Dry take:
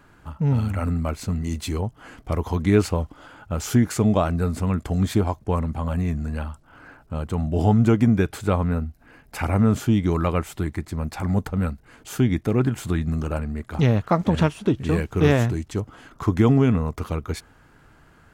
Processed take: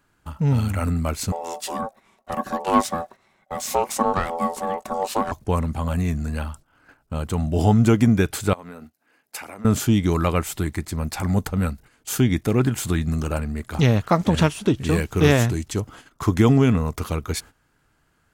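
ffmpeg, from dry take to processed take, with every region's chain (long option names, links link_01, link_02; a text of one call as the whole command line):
ffmpeg -i in.wav -filter_complex "[0:a]asettb=1/sr,asplit=3[link_01][link_02][link_03];[link_01]atrim=end=1.324[link_04];[link_02]atrim=start=1.32:end=5.32,asetpts=PTS-STARTPTS,afade=type=in:duration=0.004:curve=qsin,afade=type=out:start_time=3.996:duration=0.004:curve=qsin,aeval=exprs='(tanh(3.55*val(0)+0.65)-tanh(0.65))/3.55':channel_layout=same,equalizer=frequency=450:width=4.8:gain=12.5,aeval=exprs='val(0)*sin(2*PI*670*n/s)':channel_layout=same[link_05];[link_03]atrim=start=5.316[link_06];[link_04][link_05]acrossfade=duration=0.004:curve1=hsin:curve2=qsin[link_07];[link_07][link_06]acrossfade=duration=0.004:curve1=qsin:curve2=hsin,asettb=1/sr,asplit=3[link_08][link_09][link_10];[link_08]atrim=end=8.534[link_11];[link_09]atrim=start=8.53:end=9.65,asetpts=PTS-STARTPTS,afade=type=in:duration=0.004:curve=qsin,afade=type=out:start_time=1.116:duration=0.004:curve=qsin,highpass=300,acompressor=threshold=-35dB:ratio=12:attack=3.2:release=140:knee=1:detection=peak[link_12];[link_10]atrim=start=9.646[link_13];[link_11][link_12]acrossfade=duration=0.004:curve1=hsin:curve2=qsin[link_14];[link_14][link_13]acrossfade=duration=0.004:curve1=qsin:curve2=hsin,agate=range=-14dB:threshold=-43dB:ratio=16:detection=peak,highshelf=frequency=3300:gain=10,volume=1dB" out.wav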